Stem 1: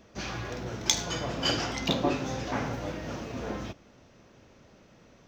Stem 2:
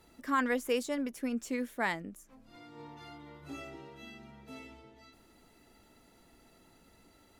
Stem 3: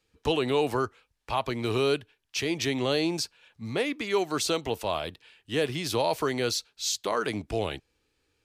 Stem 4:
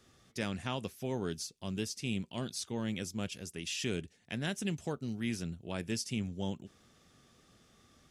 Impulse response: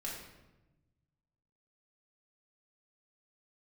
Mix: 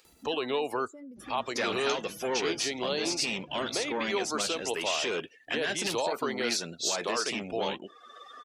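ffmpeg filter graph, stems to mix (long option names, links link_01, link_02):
-filter_complex "[0:a]adelay=1000,volume=-15dB[link_01];[1:a]bass=frequency=250:gain=4,treble=frequency=4000:gain=11,alimiter=level_in=3.5dB:limit=-24dB:level=0:latency=1,volume=-3.5dB,acompressor=threshold=-40dB:ratio=6,adelay=50,volume=-3dB[link_02];[2:a]volume=-1.5dB[link_03];[3:a]asplit=2[link_04][link_05];[link_05]highpass=frequency=720:poles=1,volume=27dB,asoftclip=type=tanh:threshold=-20dB[link_06];[link_04][link_06]amix=inputs=2:normalize=0,lowpass=frequency=2800:poles=1,volume=-6dB,adelay=1200,volume=0.5dB[link_07];[link_03][link_07]amix=inputs=2:normalize=0,bass=frequency=250:gain=-12,treble=frequency=4000:gain=3,alimiter=limit=-18.5dB:level=0:latency=1:release=121,volume=0dB[link_08];[link_01][link_02][link_08]amix=inputs=3:normalize=0,afftdn=noise_reduction=25:noise_floor=-43,acompressor=mode=upward:threshold=-38dB:ratio=2.5,lowshelf=frequency=79:gain=-12"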